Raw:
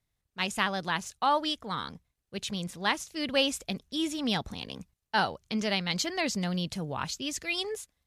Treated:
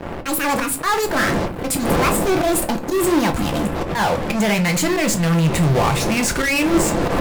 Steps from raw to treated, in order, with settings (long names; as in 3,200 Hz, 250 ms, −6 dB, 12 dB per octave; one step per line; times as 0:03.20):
gliding playback speed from 152% → 72%
wind on the microphone 520 Hz −44 dBFS
camcorder AGC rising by 22 dB per second
flat-topped bell 4,300 Hz −14.5 dB 1.2 octaves
volume swells 136 ms
in parallel at −7 dB: fuzz pedal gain 48 dB, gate −51 dBFS
on the sum: convolution reverb RT60 0.30 s, pre-delay 6 ms, DRR 5 dB